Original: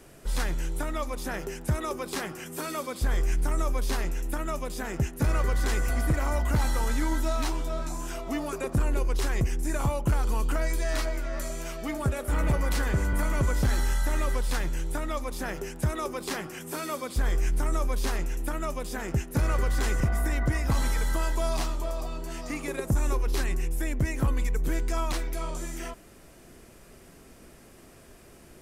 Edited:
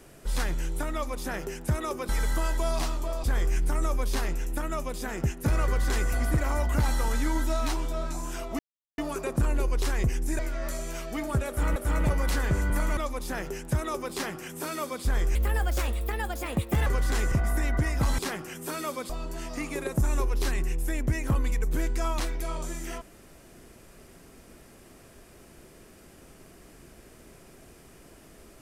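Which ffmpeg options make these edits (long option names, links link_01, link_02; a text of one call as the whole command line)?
ffmpeg -i in.wav -filter_complex "[0:a]asplit=11[link_01][link_02][link_03][link_04][link_05][link_06][link_07][link_08][link_09][link_10][link_11];[link_01]atrim=end=2.092[link_12];[link_02]atrim=start=20.868:end=22.022[link_13];[link_03]atrim=start=2.998:end=8.35,asetpts=PTS-STARTPTS,afade=type=out:start_time=5.348:duration=0.004:curve=hsin,apad=pad_dur=0.39[link_14];[link_04]atrim=start=8.35:end=9.762,asetpts=PTS-STARTPTS,afade=type=in:duration=0.004:curve=hsin[link_15];[link_05]atrim=start=11.098:end=12.472[link_16];[link_06]atrim=start=12.188:end=13.402[link_17];[link_07]atrim=start=15.078:end=17.464[link_18];[link_08]atrim=start=17.46:end=19.55,asetpts=PTS-STARTPTS,asetrate=60858,aresample=44100,atrim=end_sample=66789,asetpts=PTS-STARTPTS[link_19];[link_09]atrim=start=19.546:end=20.872[link_20];[link_10]atrim=start=2.088:end=3.002[link_21];[link_11]atrim=start=22.018[link_22];[link_12][link_13]acrossfade=duration=0.004:curve1=hsin:curve2=hsin[link_23];[link_14][link_15]concat=n=2:v=0:a=1[link_24];[link_23][link_24]acrossfade=duration=0.004:curve1=hsin:curve2=hsin[link_25];[link_25][link_16]acrossfade=duration=0.004:curve1=hsin:curve2=hsin[link_26];[link_26][link_17]acrossfade=duration=0.004:curve1=hsin:curve2=hsin[link_27];[link_27][link_18]acrossfade=duration=0.004:curve1=hsin:curve2=hsin[link_28];[link_28][link_19]acrossfade=duration=0.004:curve1=hsin:curve2=hsin[link_29];[link_29][link_20]acrossfade=duration=0.004:curve1=hsin:curve2=hsin[link_30];[link_30][link_21]acrossfade=duration=0.004:curve1=hsin:curve2=hsin[link_31];[link_31][link_22]acrossfade=duration=0.004:curve1=hsin:curve2=hsin" out.wav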